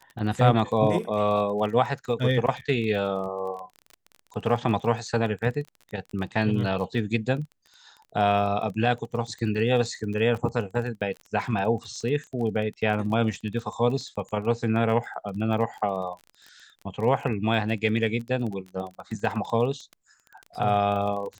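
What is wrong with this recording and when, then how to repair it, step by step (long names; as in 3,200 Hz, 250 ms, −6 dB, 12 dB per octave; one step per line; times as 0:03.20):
surface crackle 23 per second −33 dBFS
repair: click removal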